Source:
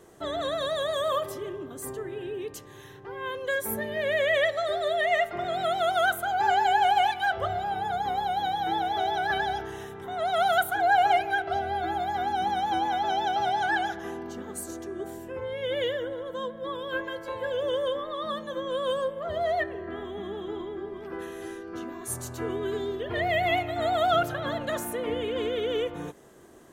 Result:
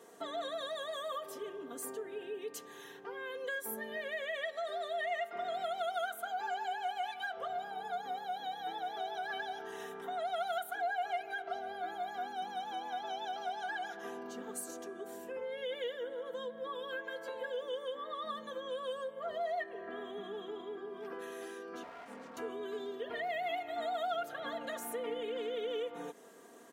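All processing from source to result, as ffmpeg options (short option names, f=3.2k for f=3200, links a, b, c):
-filter_complex "[0:a]asettb=1/sr,asplit=3[a][b][c];[a]atrim=end=21.834[d];[b]atrim=start=21.83:end=22.37,asetpts=PTS-STARTPTS,afade=t=in:d=0.004:c=qsin,afade=t=out:st=0.536:d=0.004:c=qsin,lowpass=1.6k,aeval=exprs='abs(val(0))':c=same[e];[c]atrim=start=22.366[f];[d][e]acrossfade=d=0.004:c1=hsin:c2=qsin[g];[g][f]acrossfade=d=0.004:c1=qsin:c2=hsin,acompressor=threshold=-37dB:ratio=3,highpass=280,aecho=1:1:4.3:0.63,volume=-3dB"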